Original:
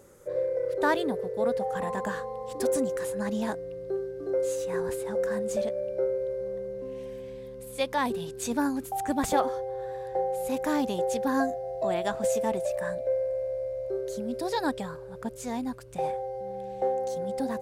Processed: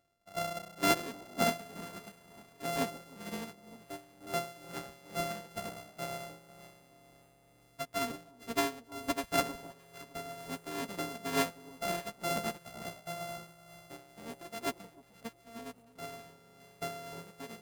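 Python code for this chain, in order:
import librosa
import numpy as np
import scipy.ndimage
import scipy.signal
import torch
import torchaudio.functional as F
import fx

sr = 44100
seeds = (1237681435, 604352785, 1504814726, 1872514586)

y = np.r_[np.sort(x[:len(x) // 64 * 64].reshape(-1, 64), axis=1).ravel(), x[len(x) // 64 * 64:]]
y = fx.echo_alternate(y, sr, ms=308, hz=1000.0, feedback_pct=62, wet_db=-4.5)
y = y * (1.0 - 0.33 / 2.0 + 0.33 / 2.0 * np.cos(2.0 * np.pi * 2.1 * (np.arange(len(y)) / sr)))
y = fx.upward_expand(y, sr, threshold_db=-37.0, expansion=2.5)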